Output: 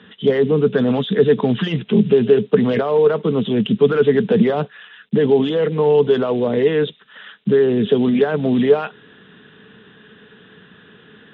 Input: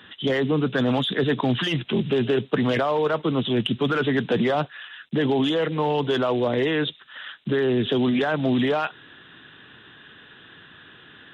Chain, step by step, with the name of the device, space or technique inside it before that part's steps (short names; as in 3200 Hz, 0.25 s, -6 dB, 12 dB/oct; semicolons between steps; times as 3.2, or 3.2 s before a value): inside a cardboard box (LPF 4100 Hz 12 dB/oct; small resonant body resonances 200/430 Hz, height 15 dB, ringing for 65 ms); gain -1 dB